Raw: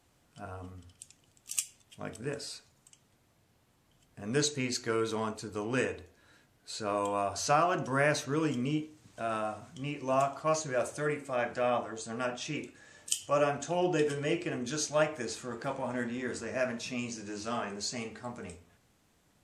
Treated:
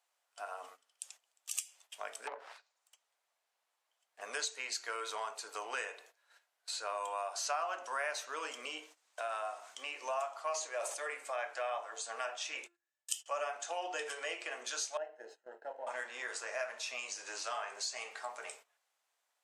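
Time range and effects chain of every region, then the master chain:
2.27–4.21 self-modulated delay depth 0.52 ms + treble ducked by the level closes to 1000 Hz, closed at -36.5 dBFS
10.5–11.09 HPF 230 Hz + bell 1500 Hz -8.5 dB 0.25 oct + sustainer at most 83 dB/s
12.55–13.26 gate -45 dBFS, range -27 dB + notch 4500 Hz, Q 23 + de-hum 345.2 Hz, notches 5
14.97–15.87 G.711 law mismatch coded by A + running mean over 38 samples
whole clip: HPF 640 Hz 24 dB/oct; gate -60 dBFS, range -16 dB; compressor 2.5:1, threshold -46 dBFS; gain +6 dB

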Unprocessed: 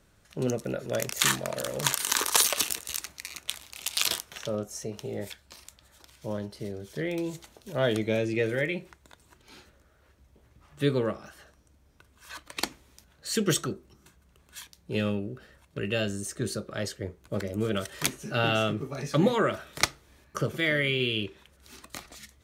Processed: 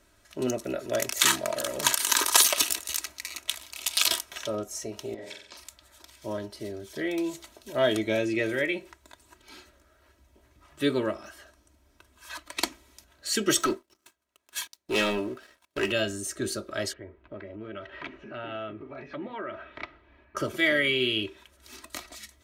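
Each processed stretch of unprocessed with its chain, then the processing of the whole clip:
5.14–5.57 compressor 4:1, threshold -38 dBFS + BPF 130–5700 Hz + flutter echo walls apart 7.8 m, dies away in 0.63 s
13.6–15.92 HPF 330 Hz 6 dB/oct + sample leveller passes 3 + upward expander, over -42 dBFS
16.93–20.37 LPF 2700 Hz 24 dB/oct + compressor 2.5:1, threshold -40 dBFS
whole clip: low shelf 280 Hz -6 dB; comb 3.1 ms, depth 65%; gain +1.5 dB

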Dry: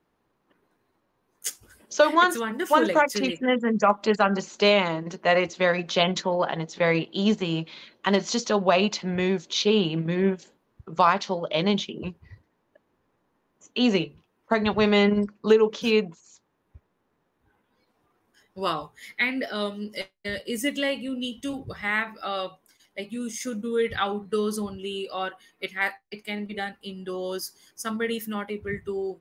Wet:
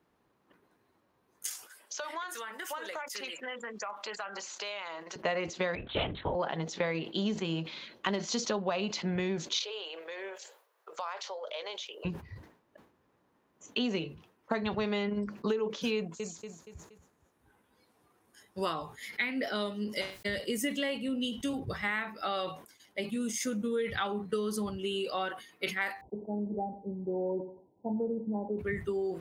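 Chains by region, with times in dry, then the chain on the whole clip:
1.46–5.16 HPF 780 Hz + compressor, threshold -36 dBFS
5.75–6.35 LPC vocoder at 8 kHz whisper + upward expander, over -31 dBFS
9.59–12.05 Chebyshev high-pass 480 Hz, order 4 + high shelf 9000 Hz +11.5 dB + compressor 3:1, threshold -40 dBFS
15.96–18.66 bell 10000 Hz +9.5 dB 1 oct + feedback echo 0.236 s, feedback 44%, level -15 dB
26.01–28.59 brick-wall FIR low-pass 1000 Hz + feedback echo 92 ms, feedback 39%, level -19 dB
whole clip: compressor 6:1, threshold -29 dBFS; HPF 44 Hz; sustainer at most 110 dB/s

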